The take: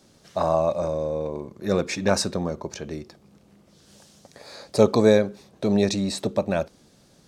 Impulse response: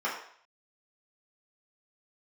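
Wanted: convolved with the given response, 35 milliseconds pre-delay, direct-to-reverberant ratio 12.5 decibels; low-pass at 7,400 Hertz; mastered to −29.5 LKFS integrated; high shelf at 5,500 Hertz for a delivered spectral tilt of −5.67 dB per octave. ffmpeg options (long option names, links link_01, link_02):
-filter_complex "[0:a]lowpass=7400,highshelf=frequency=5500:gain=-4.5,asplit=2[link_01][link_02];[1:a]atrim=start_sample=2205,adelay=35[link_03];[link_02][link_03]afir=irnorm=-1:irlink=0,volume=-22dB[link_04];[link_01][link_04]amix=inputs=2:normalize=0,volume=-5.5dB"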